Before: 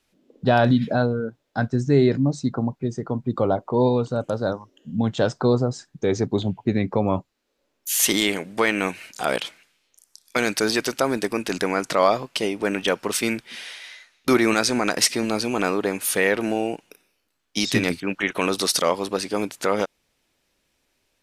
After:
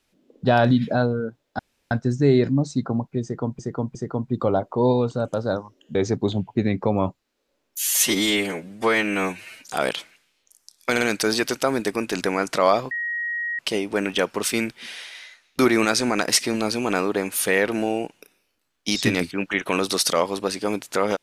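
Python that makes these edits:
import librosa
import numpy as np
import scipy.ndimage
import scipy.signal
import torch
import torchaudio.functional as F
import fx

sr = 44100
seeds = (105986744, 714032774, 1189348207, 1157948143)

y = fx.edit(x, sr, fx.insert_room_tone(at_s=1.59, length_s=0.32),
    fx.repeat(start_s=2.91, length_s=0.36, count=3),
    fx.cut(start_s=4.91, length_s=1.14),
    fx.stretch_span(start_s=7.89, length_s=1.26, factor=1.5),
    fx.stutter(start_s=10.38, slice_s=0.05, count=3),
    fx.insert_tone(at_s=12.28, length_s=0.68, hz=1890.0, db=-24.0), tone=tone)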